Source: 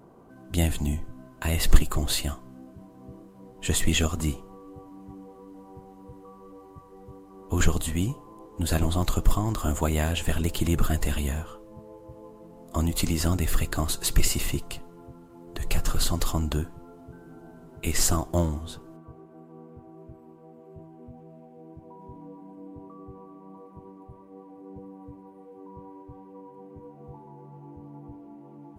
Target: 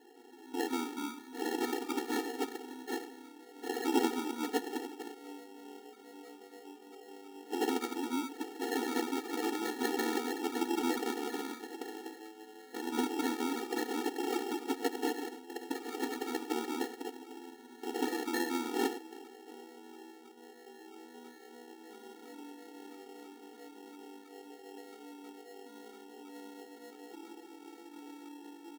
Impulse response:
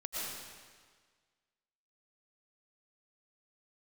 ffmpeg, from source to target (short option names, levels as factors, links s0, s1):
-filter_complex "[0:a]lowshelf=f=62:g=-10,acrossover=split=330|5600[s0][s1][s2];[s0]adelay=160[s3];[s2]adelay=790[s4];[s3][s1][s4]amix=inputs=3:normalize=0,asplit=2[s5][s6];[1:a]atrim=start_sample=2205,afade=t=out:st=0.31:d=0.01,atrim=end_sample=14112,asetrate=83790,aresample=44100[s7];[s6][s7]afir=irnorm=-1:irlink=0,volume=0.562[s8];[s5][s8]amix=inputs=2:normalize=0,acrusher=samples=37:mix=1:aa=0.000001,afftfilt=real='re*eq(mod(floor(b*sr/1024/240),2),1)':imag='im*eq(mod(floor(b*sr/1024/240),2),1)':win_size=1024:overlap=0.75"